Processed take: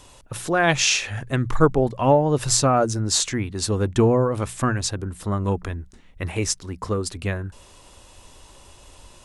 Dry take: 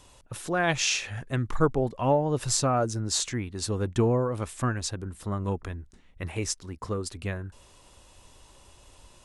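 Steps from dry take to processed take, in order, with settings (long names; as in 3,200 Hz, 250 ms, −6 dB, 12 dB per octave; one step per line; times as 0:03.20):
mains-hum notches 60/120/180 Hz
level +6.5 dB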